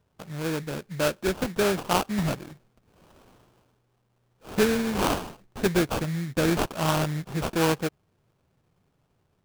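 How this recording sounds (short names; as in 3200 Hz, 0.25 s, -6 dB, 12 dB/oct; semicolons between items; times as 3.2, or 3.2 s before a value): aliases and images of a low sample rate 2000 Hz, jitter 20%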